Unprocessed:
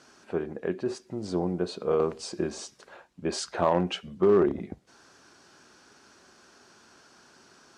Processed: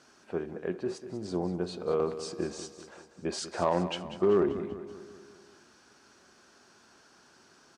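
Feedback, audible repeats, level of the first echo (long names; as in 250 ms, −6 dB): 55%, 5, −12.5 dB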